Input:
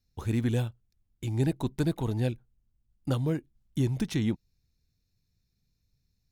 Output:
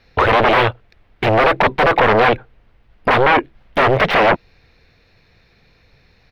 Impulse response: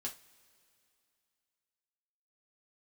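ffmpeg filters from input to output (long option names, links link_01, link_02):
-af "bass=frequency=250:gain=-8,treble=frequency=4000:gain=5,aeval=exprs='(tanh(22.4*val(0)+0.4)-tanh(0.4))/22.4':channel_layout=same,aeval=exprs='0.0891*sin(PI/2*8.91*val(0)/0.0891)':channel_layout=same,firequalizer=gain_entry='entry(230,0);entry(510,11);entry(1100,9);entry(2000,11);entry(7100,-26)':delay=0.05:min_phase=1,volume=5dB"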